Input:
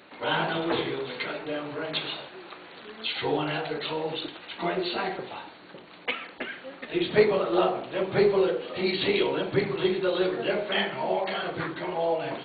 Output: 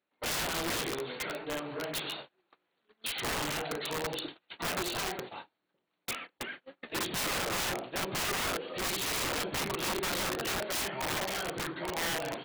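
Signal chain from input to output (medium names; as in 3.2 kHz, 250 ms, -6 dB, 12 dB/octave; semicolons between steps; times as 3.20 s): integer overflow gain 23.5 dB; gate -38 dBFS, range -30 dB; trim -4 dB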